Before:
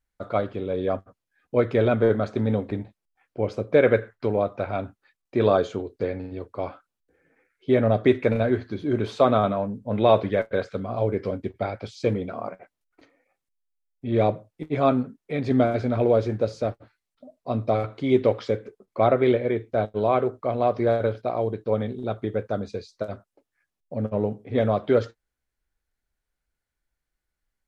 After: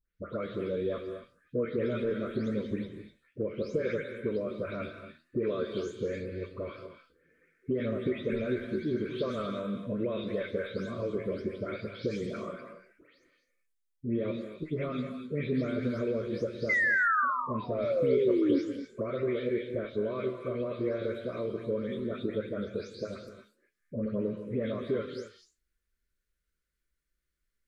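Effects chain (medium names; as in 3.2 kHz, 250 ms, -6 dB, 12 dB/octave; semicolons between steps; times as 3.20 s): delay that grows with frequency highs late, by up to 237 ms; compression 6:1, threshold -26 dBFS, peak gain reduction 12.5 dB; flange 0.76 Hz, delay 9 ms, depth 7.8 ms, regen +81%; painted sound fall, 16.69–18.59 s, 270–2100 Hz -29 dBFS; Butterworth band-stop 800 Hz, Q 1.4; gated-style reverb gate 280 ms rising, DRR 7 dB; trim +3 dB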